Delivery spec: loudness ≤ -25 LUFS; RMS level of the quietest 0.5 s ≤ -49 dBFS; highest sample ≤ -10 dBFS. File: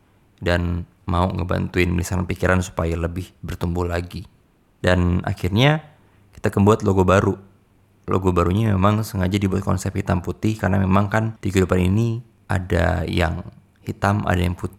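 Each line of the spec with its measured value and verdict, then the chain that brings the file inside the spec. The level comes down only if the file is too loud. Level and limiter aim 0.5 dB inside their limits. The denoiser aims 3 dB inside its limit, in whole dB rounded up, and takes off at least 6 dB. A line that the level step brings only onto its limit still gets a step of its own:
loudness -21.0 LUFS: fail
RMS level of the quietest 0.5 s -57 dBFS: pass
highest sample -3.5 dBFS: fail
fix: trim -4.5 dB; peak limiter -10.5 dBFS

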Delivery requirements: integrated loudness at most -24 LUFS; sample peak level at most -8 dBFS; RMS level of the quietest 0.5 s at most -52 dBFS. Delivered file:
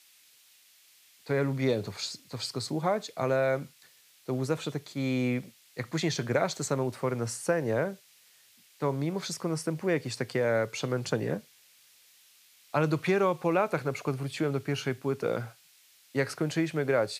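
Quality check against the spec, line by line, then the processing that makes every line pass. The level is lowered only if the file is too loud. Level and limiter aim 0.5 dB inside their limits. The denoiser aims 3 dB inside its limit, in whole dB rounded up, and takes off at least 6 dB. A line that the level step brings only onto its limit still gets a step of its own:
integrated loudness -30.5 LUFS: pass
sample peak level -12.0 dBFS: pass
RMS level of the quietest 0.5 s -61 dBFS: pass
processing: none needed

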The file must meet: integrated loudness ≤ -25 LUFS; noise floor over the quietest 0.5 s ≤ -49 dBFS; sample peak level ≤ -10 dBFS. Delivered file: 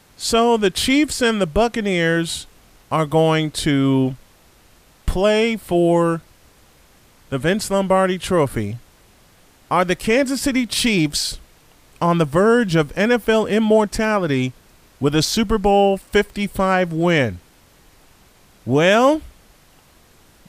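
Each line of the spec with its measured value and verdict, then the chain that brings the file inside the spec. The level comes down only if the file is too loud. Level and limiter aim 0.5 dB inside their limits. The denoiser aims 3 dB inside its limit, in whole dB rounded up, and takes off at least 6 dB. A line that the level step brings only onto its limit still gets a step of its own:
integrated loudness -18.0 LUFS: fail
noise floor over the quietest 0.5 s -52 dBFS: pass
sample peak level -4.5 dBFS: fail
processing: trim -7.5 dB

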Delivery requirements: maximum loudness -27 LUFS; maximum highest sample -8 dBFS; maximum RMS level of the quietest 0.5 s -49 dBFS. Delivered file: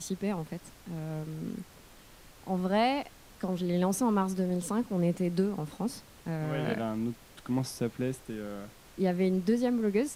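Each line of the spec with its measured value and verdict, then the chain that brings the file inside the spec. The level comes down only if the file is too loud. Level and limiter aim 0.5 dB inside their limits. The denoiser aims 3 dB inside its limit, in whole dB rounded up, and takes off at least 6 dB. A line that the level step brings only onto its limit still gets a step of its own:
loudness -31.5 LUFS: pass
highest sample -15.5 dBFS: pass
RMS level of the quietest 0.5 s -54 dBFS: pass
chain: none needed

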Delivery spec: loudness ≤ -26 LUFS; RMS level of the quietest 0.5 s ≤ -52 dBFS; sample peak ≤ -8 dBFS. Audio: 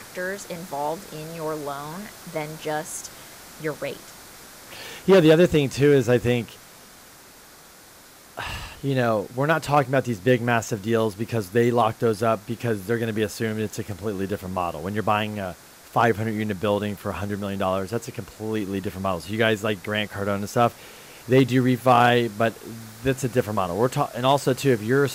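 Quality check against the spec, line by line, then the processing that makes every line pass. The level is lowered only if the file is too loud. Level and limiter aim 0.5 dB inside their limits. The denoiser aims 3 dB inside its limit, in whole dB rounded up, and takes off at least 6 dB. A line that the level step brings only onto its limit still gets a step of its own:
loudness -23.5 LUFS: fail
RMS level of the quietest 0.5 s -48 dBFS: fail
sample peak -4.0 dBFS: fail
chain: noise reduction 6 dB, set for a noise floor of -48 dBFS; trim -3 dB; peak limiter -8.5 dBFS

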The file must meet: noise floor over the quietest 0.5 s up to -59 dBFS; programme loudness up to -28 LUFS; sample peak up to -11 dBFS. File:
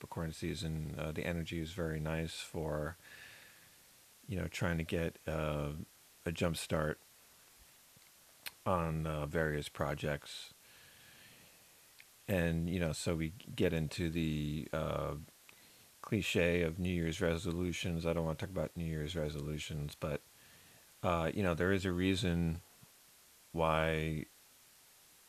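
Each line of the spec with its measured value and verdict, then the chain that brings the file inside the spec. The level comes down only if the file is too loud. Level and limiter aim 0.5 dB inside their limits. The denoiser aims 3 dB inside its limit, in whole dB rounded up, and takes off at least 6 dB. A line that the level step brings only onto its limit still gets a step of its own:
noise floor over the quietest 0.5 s -63 dBFS: pass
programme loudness -37.5 LUFS: pass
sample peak -16.0 dBFS: pass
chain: none needed

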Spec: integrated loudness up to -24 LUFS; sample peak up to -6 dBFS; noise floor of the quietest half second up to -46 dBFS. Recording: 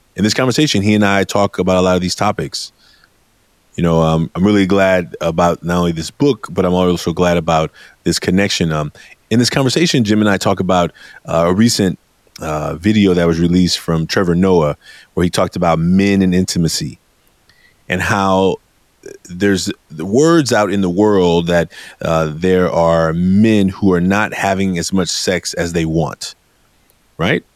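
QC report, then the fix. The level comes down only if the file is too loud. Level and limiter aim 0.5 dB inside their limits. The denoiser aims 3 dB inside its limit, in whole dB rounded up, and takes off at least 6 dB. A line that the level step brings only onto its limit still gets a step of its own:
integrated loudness -14.5 LUFS: fail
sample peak -2.0 dBFS: fail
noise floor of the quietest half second -56 dBFS: pass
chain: trim -10 dB

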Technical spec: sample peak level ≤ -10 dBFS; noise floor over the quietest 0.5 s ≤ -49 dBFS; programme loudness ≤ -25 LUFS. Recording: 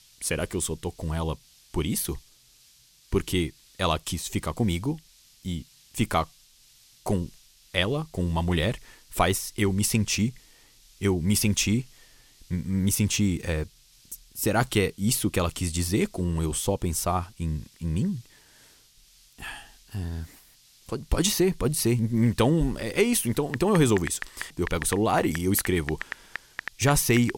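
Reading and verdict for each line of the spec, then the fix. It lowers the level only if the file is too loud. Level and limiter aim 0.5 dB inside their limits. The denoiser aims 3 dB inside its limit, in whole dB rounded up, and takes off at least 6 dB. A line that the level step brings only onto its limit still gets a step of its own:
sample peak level -6.5 dBFS: fail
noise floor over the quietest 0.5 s -58 dBFS: pass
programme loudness -26.5 LUFS: pass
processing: peak limiter -10.5 dBFS

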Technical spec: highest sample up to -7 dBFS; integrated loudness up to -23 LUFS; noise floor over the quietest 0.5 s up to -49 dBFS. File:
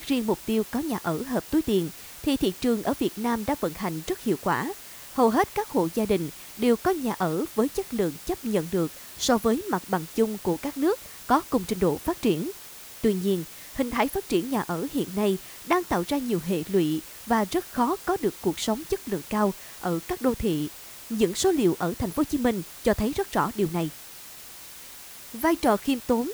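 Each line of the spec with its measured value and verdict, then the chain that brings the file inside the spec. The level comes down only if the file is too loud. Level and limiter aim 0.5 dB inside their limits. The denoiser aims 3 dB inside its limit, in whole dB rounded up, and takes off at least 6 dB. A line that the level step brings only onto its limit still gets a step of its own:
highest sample -8.5 dBFS: pass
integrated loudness -26.5 LUFS: pass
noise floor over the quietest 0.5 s -44 dBFS: fail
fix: noise reduction 8 dB, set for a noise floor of -44 dBFS

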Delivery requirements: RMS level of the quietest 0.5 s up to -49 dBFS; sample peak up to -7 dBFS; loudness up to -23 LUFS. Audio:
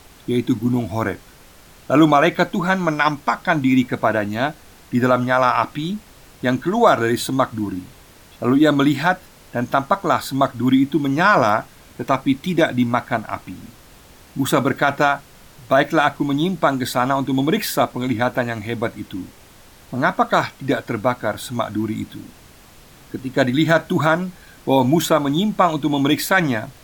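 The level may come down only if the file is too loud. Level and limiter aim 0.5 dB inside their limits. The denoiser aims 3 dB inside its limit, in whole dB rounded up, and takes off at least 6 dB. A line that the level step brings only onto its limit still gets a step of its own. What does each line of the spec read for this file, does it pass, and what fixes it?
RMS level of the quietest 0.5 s -46 dBFS: fail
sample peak -3.0 dBFS: fail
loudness -19.0 LUFS: fail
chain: trim -4.5 dB

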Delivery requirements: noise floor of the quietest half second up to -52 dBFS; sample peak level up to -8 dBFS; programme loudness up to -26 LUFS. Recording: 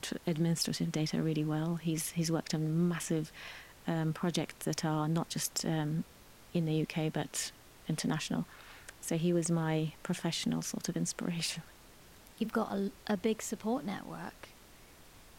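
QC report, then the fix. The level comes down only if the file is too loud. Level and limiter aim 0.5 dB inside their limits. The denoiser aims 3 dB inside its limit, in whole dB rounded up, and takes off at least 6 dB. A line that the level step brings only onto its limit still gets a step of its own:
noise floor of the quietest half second -57 dBFS: pass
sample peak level -19.5 dBFS: pass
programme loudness -34.5 LUFS: pass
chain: none needed

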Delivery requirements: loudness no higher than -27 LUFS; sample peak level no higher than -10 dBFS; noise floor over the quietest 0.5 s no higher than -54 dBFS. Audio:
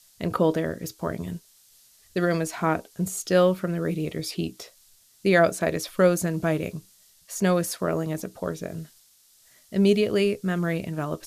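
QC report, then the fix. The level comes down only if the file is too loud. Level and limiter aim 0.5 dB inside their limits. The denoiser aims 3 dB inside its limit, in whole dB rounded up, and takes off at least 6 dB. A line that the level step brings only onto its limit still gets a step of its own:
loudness -25.5 LUFS: fail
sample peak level -6.5 dBFS: fail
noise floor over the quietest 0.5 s -58 dBFS: pass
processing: trim -2 dB; peak limiter -10.5 dBFS

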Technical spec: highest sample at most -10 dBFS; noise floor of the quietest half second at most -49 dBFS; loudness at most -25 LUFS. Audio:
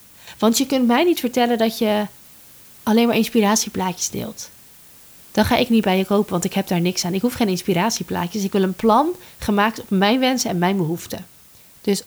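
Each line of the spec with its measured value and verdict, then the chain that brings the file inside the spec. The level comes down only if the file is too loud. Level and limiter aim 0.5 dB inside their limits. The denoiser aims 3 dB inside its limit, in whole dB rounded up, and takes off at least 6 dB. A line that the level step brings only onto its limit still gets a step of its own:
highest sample -4.0 dBFS: fail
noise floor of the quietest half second -48 dBFS: fail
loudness -19.5 LUFS: fail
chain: trim -6 dB; peak limiter -10.5 dBFS

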